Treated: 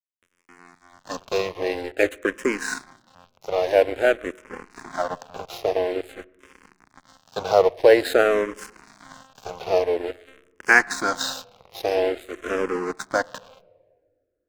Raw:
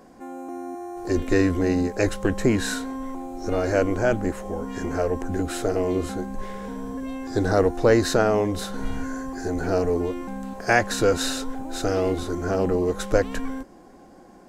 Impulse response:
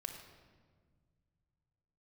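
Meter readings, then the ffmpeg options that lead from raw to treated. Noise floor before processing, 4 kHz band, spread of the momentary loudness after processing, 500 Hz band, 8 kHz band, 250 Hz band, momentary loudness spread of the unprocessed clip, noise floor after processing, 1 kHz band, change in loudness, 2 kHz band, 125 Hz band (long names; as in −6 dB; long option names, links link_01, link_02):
−49 dBFS, +0.5 dB, 20 LU, +1.5 dB, −3.0 dB, −8.0 dB, 13 LU, −72 dBFS, +1.0 dB, +2.0 dB, +5.5 dB, −16.5 dB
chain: -filter_complex "[0:a]highpass=470,lowpass=6500,aeval=exprs='sgn(val(0))*max(abs(val(0))-0.0224,0)':channel_layout=same,asplit=2[link_01][link_02];[1:a]atrim=start_sample=2205,lowpass=3600[link_03];[link_02][link_03]afir=irnorm=-1:irlink=0,volume=-15.5dB[link_04];[link_01][link_04]amix=inputs=2:normalize=0,asplit=2[link_05][link_06];[link_06]afreqshift=-0.49[link_07];[link_05][link_07]amix=inputs=2:normalize=1,volume=8dB"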